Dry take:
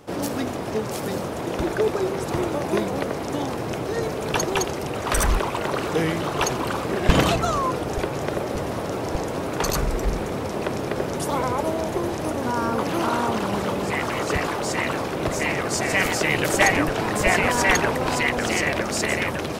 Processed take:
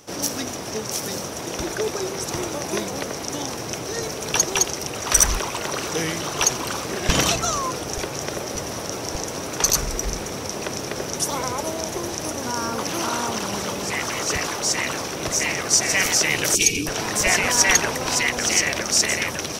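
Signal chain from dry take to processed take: high shelf 2200 Hz +11 dB; spectral gain 16.55–16.86, 490–2200 Hz -24 dB; bell 5800 Hz +12.5 dB 0.24 oct; gain -4.5 dB

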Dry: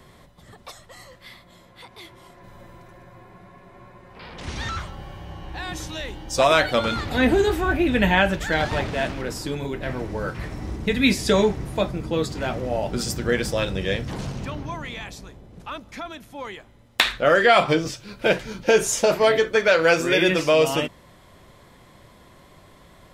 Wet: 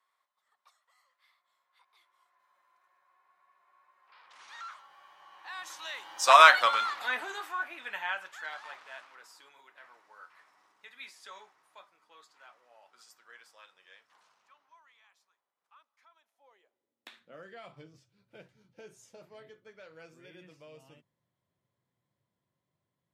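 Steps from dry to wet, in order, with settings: Doppler pass-by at 6.39, 6 m/s, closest 1.4 m; high-pass sweep 1100 Hz -> 120 Hz, 16.07–17.64

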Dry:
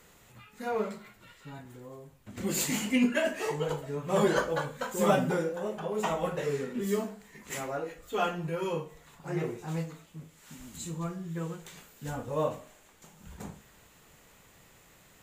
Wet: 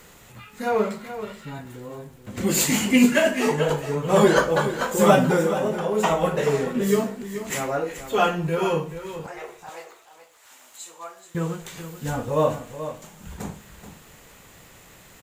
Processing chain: 9.26–11.35 ladder high-pass 530 Hz, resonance 30%; crackle 67/s -53 dBFS; echo 0.43 s -11.5 dB; gain +9 dB

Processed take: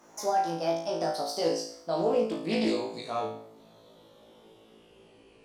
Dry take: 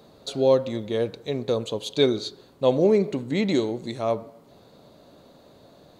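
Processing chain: speed glide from 155% -> 65%; bell 86 Hz -10.5 dB 2 oct; limiter -15.5 dBFS, peak gain reduction 8 dB; flange 1.2 Hz, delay 0.6 ms, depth 6.6 ms, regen -54%; flutter echo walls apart 3.1 m, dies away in 0.56 s; Doppler distortion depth 0.17 ms; gain -2 dB

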